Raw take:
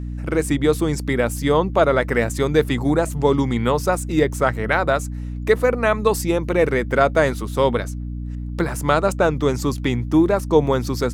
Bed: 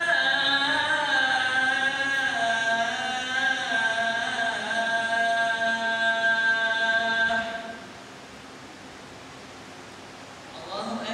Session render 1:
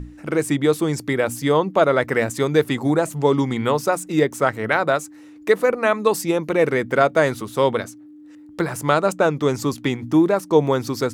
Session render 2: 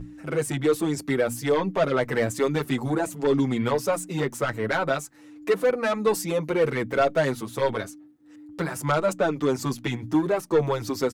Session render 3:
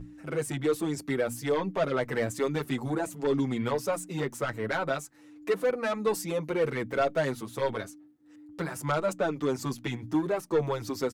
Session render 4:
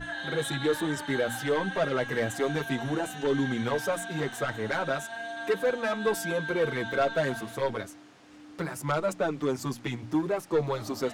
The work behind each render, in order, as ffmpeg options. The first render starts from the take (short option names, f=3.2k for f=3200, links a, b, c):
-af "bandreject=f=60:t=h:w=6,bandreject=f=120:t=h:w=6,bandreject=f=180:t=h:w=6,bandreject=f=240:t=h:w=6"
-filter_complex "[0:a]asoftclip=type=tanh:threshold=-13dB,asplit=2[a][b];[b]adelay=6.8,afreqshift=-1.3[c];[a][c]amix=inputs=2:normalize=1"
-af "volume=-5dB"
-filter_complex "[1:a]volume=-13.5dB[a];[0:a][a]amix=inputs=2:normalize=0"